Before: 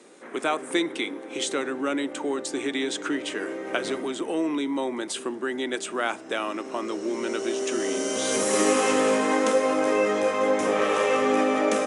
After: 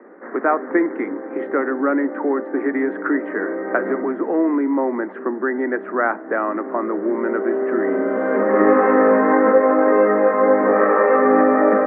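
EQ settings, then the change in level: Chebyshev band-pass 190–1900 Hz, order 5; +8.5 dB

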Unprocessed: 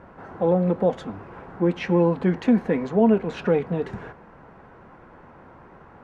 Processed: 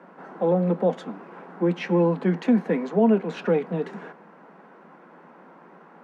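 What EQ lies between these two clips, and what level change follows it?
steep high-pass 160 Hz 96 dB/octave; -1.0 dB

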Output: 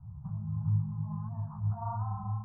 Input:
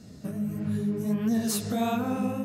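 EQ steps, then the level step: inverse Chebyshev band-stop 240–570 Hz, stop band 50 dB; steep low-pass 960 Hz 48 dB/octave; +8.5 dB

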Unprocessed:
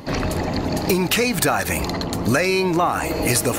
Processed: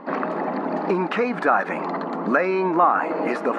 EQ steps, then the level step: brick-wall FIR high-pass 170 Hz; resonant low-pass 1.3 kHz, resonance Q 1.7; bass shelf 360 Hz -4.5 dB; 0.0 dB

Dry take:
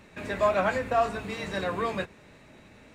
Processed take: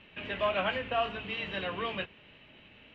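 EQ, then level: resonant low-pass 3 kHz, resonance Q 11; distance through air 60 m; -6.5 dB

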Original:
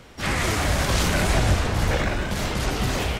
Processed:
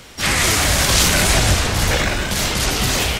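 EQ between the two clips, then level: treble shelf 2.4 kHz +11.5 dB; +3.0 dB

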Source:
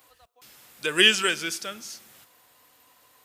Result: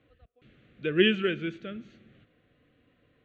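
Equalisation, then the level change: inverse Chebyshev low-pass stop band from 9.8 kHz, stop band 50 dB; tilt shelf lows +9.5 dB, about 700 Hz; static phaser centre 2.2 kHz, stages 4; 0.0 dB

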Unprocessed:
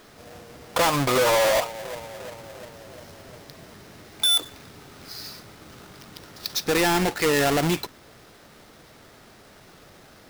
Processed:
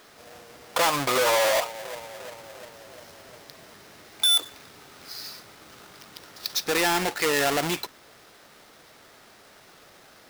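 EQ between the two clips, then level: bass shelf 300 Hz -11.5 dB; 0.0 dB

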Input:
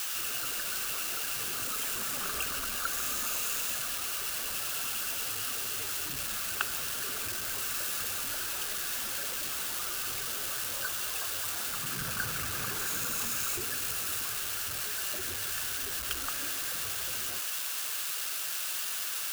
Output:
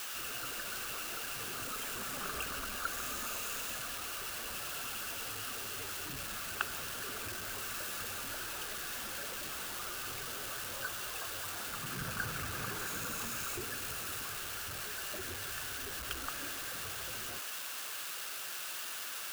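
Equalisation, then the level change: treble shelf 2.8 kHz -7.5 dB; -1.0 dB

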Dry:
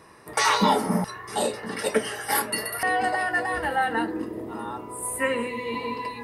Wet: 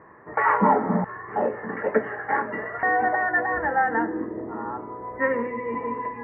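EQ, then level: elliptic low-pass 1.9 kHz, stop band 50 dB; bass shelf 91 Hz -5.5 dB; +2.5 dB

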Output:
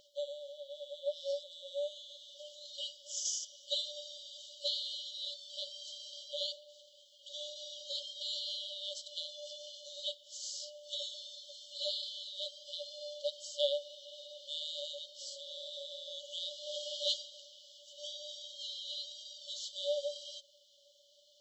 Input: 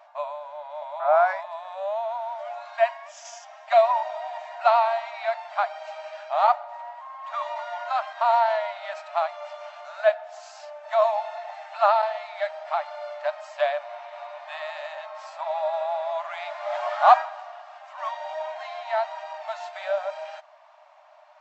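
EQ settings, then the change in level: brick-wall FIR band-stop 570–2900 Hz; bass shelf 480 Hz +5.5 dB; treble shelf 4.2 kHz +6 dB; +4.5 dB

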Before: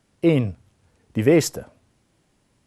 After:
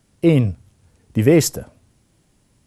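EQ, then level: bass shelf 240 Hz +8 dB; treble shelf 5.3 kHz +8.5 dB; 0.0 dB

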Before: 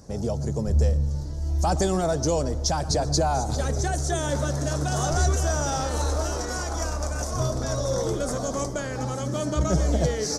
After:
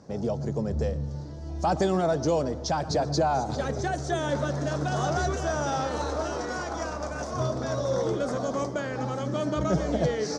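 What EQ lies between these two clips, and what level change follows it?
band-pass 130–3800 Hz; 0.0 dB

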